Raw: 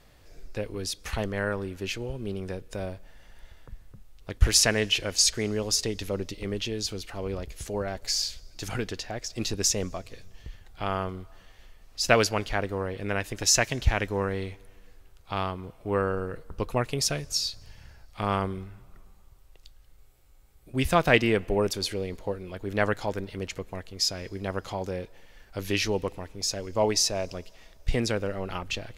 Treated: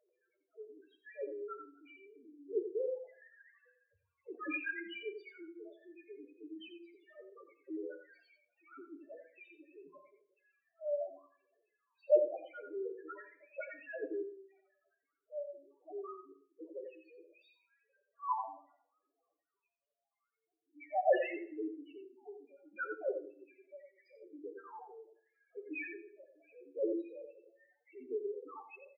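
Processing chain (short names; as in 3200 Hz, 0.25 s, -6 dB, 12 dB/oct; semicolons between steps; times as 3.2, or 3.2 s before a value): 2.55–4.64 sine-wave speech; mistuned SSB -92 Hz 480–2800 Hz; phaser 0.78 Hz, delay 1.8 ms, feedback 63%; rotary speaker horn 7 Hz, later 1.1 Hz, at 7.89; 16.23–17.24 envelope flanger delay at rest 11.7 ms, full sweep at -26 dBFS; in parallel at -5 dB: bit-crush 5-bit; on the sum: loudest bins only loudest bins 1; echo 88 ms -6.5 dB; on a send at -7 dB: reverb RT60 0.55 s, pre-delay 3 ms; on the sum: harmonic-percussive split harmonic -11 dB; gain +4 dB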